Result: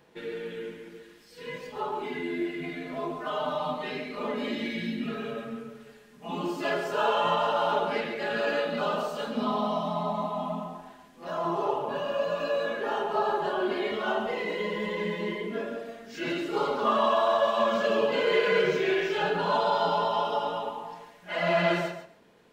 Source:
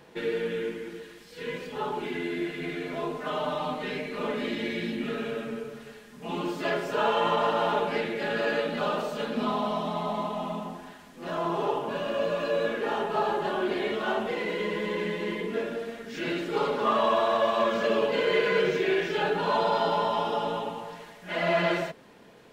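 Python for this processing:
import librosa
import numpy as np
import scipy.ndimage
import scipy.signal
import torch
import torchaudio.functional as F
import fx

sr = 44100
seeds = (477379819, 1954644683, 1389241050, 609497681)

y = fx.noise_reduce_blind(x, sr, reduce_db=7)
y = fx.echo_feedback(y, sr, ms=139, feedback_pct=17, wet_db=-9.5)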